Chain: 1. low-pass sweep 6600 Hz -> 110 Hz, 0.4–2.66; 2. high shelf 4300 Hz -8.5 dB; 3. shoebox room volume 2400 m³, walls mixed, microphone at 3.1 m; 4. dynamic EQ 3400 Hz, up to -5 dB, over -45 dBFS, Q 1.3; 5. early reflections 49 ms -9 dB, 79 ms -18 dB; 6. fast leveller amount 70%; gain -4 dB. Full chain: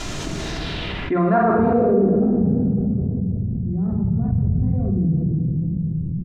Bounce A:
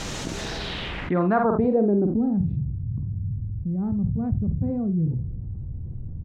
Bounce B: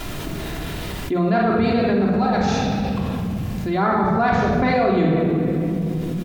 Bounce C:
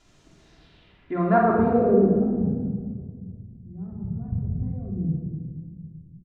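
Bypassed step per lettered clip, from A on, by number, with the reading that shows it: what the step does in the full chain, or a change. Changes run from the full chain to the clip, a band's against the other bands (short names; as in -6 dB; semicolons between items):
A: 3, 2 kHz band +2.0 dB; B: 1, 125 Hz band -6.5 dB; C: 6, crest factor change +4.5 dB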